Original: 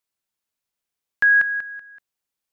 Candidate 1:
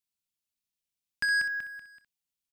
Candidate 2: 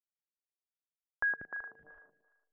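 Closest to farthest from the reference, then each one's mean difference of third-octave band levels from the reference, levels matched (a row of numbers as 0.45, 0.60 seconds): 1, 2; 4.5, 7.0 decibels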